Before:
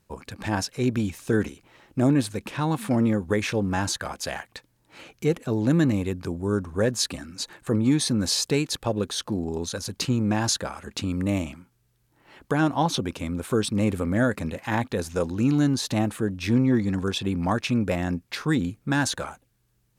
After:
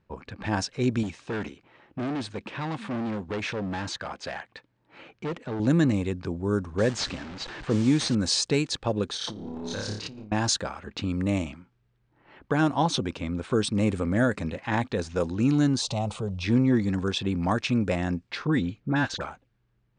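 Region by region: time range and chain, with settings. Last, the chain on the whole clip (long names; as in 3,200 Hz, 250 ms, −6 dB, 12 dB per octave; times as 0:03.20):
0:01.03–0:05.60: hard clipping −26 dBFS + high-pass filter 120 Hz 6 dB per octave
0:06.78–0:08.15: linear delta modulator 64 kbit/s, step −31.5 dBFS + low-pass filter 8,400 Hz 24 dB per octave
0:09.13–0:10.32: power curve on the samples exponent 1.4 + flutter between parallel walls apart 4.9 metres, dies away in 0.59 s + compressor whose output falls as the input rises −35 dBFS
0:15.81–0:16.44: phaser with its sweep stopped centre 710 Hz, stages 4 + envelope flattener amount 50%
0:18.47–0:19.21: high-frequency loss of the air 120 metres + all-pass dispersion highs, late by 45 ms, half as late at 1,400 Hz
whole clip: elliptic low-pass filter 9,000 Hz, stop band 40 dB; low-pass that shuts in the quiet parts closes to 2,400 Hz, open at −18.5 dBFS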